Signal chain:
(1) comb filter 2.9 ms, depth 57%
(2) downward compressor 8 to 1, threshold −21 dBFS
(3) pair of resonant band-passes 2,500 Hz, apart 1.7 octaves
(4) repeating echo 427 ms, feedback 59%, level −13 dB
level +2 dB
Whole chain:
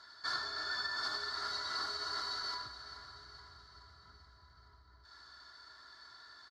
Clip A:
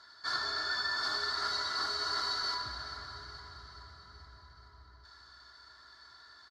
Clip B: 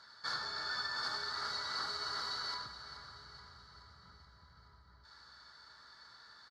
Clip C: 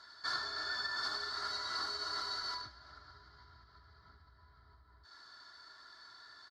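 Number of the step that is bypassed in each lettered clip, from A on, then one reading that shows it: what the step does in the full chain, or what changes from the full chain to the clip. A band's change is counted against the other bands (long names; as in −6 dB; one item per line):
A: 2, average gain reduction 5.0 dB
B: 1, 125 Hz band +2.0 dB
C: 4, echo-to-direct ratio −11.0 dB to none audible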